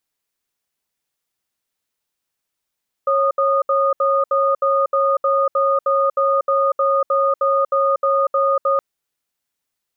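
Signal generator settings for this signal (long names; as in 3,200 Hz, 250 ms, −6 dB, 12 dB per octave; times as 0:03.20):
tone pair in a cadence 549 Hz, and 1,230 Hz, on 0.24 s, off 0.07 s, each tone −16.5 dBFS 5.72 s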